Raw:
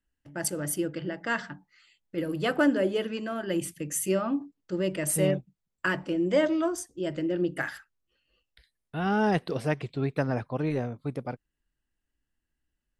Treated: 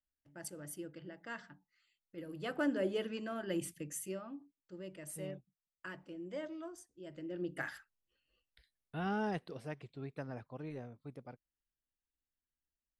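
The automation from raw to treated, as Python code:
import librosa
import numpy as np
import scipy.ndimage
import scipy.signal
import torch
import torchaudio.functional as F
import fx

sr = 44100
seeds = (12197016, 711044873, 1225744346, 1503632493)

y = fx.gain(x, sr, db=fx.line((2.23, -16.0), (2.88, -8.0), (3.76, -8.0), (4.27, -19.0), (7.03, -19.0), (7.67, -8.0), (8.99, -8.0), (9.56, -16.0)))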